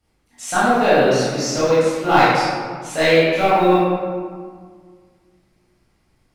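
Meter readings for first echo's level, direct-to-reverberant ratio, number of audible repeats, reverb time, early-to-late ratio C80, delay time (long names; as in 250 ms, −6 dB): no echo audible, −11.0 dB, no echo audible, 1.8 s, −0.5 dB, no echo audible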